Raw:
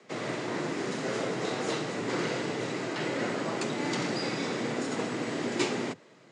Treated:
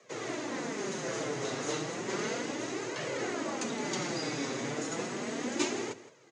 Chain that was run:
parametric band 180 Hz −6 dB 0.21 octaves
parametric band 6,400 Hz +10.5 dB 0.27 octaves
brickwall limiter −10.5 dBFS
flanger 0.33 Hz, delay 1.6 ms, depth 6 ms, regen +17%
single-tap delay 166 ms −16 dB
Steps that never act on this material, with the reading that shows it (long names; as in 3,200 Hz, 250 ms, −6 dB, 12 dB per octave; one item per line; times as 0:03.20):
brickwall limiter −10.5 dBFS: peak of its input −15.5 dBFS